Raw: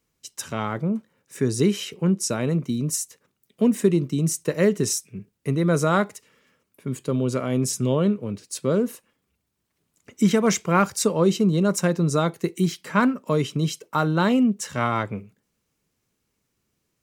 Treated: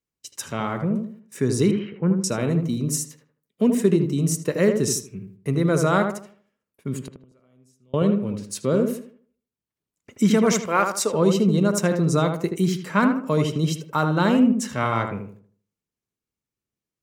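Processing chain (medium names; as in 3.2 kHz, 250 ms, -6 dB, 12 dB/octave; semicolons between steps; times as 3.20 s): gate -52 dBFS, range -16 dB; 1.71–2.24 s: low-pass 2.1 kHz 24 dB/octave; 7.01–7.94 s: inverted gate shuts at -26 dBFS, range -36 dB; 10.66–11.14 s: high-pass 380 Hz 12 dB/octave; on a send: filtered feedback delay 78 ms, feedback 36%, low-pass 1.6 kHz, level -5 dB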